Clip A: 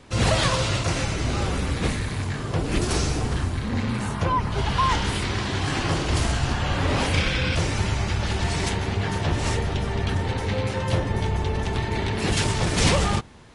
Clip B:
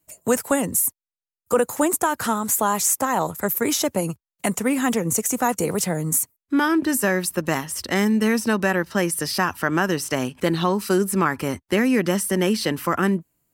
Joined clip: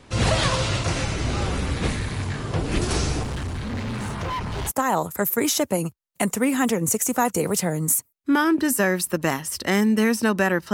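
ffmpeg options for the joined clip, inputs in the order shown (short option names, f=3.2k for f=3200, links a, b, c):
-filter_complex "[0:a]asettb=1/sr,asplit=3[a][b][c];[a]atrim=end=3.234[d];[b]atrim=start=3.23:end=4.72,asetpts=PTS-STARTPTS,afade=t=in:d=0.004:c=qsin,afade=t=out:st=1.486:d=0.004:c=qsin,asoftclip=type=hard:threshold=-25.5dB[e];[c]atrim=start=4.716[f];[d][e]acrossfade=d=0.004:c1=hsin:c2=qsin[g];[g][f]acrossfade=d=0.004:c1=qsin:c2=hsin,apad=whole_dur=10.73,atrim=end=10.73,atrim=end=4.72,asetpts=PTS-STARTPTS[h];[1:a]atrim=start=2.9:end=8.97,asetpts=PTS-STARTPTS[i];[h][i]acrossfade=d=0.06:c1=tri:c2=tri"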